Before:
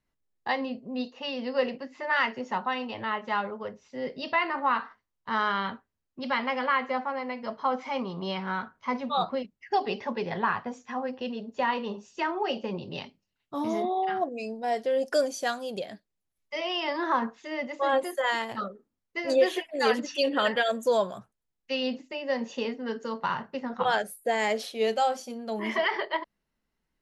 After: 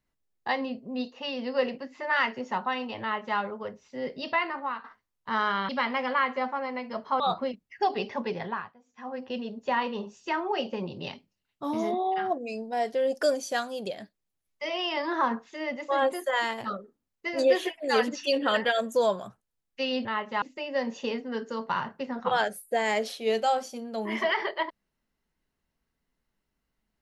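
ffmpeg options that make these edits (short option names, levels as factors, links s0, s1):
-filter_complex "[0:a]asplit=8[s0][s1][s2][s3][s4][s5][s6][s7];[s0]atrim=end=4.84,asetpts=PTS-STARTPTS,afade=t=out:st=4.31:d=0.53:silence=0.223872[s8];[s1]atrim=start=4.84:end=5.692,asetpts=PTS-STARTPTS,afade=t=in:d=0.004:c=hsin:silence=0.223872[s9];[s2]atrim=start=6.218:end=7.732[s10];[s3]atrim=start=9.108:end=10.66,asetpts=PTS-STARTPTS,afade=t=out:st=1.092:d=0.46:silence=0.0707946[s11];[s4]atrim=start=10.66:end=10.77,asetpts=PTS-STARTPTS,volume=0.0708[s12];[s5]atrim=start=10.77:end=21.962,asetpts=PTS-STARTPTS,afade=t=in:d=0.46:silence=0.0707946[s13];[s6]atrim=start=3.008:end=3.382[s14];[s7]atrim=start=21.958[s15];[s8][s9]concat=n=2:v=0:a=1[s16];[s16][s10]acrossfade=d=0.004:c1=hsin:c2=hsin[s17];[s11][s12][s13]concat=n=3:v=0:a=1[s18];[s17][s18]acrossfade=d=0.004:c1=hsin:c2=hsin[s19];[s19][s14]acrossfade=d=0.004:c1=hsin:c2=hsin[s20];[s20][s15]acrossfade=d=0.004:c1=hsin:c2=hsin"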